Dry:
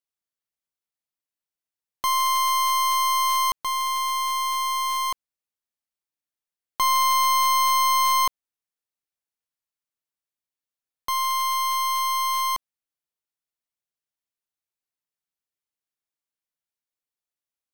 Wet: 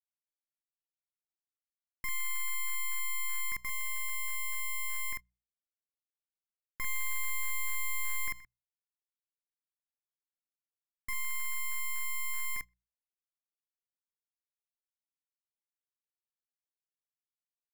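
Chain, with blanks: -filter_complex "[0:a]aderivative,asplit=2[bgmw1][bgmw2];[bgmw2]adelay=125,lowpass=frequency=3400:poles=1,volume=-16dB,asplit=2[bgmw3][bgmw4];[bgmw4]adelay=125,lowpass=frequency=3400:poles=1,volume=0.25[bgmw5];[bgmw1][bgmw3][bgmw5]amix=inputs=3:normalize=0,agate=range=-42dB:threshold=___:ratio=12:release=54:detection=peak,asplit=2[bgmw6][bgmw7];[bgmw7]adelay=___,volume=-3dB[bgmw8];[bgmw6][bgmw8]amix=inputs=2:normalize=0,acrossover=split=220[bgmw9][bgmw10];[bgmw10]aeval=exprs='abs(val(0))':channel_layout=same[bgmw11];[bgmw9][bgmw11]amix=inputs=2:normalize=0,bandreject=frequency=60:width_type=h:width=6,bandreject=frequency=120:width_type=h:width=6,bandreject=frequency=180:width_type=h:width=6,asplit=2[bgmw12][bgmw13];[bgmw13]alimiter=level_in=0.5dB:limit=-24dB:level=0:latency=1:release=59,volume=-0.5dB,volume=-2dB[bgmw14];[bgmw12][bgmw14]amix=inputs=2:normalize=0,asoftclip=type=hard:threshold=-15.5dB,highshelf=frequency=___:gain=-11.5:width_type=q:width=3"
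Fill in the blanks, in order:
-52dB, 46, 2500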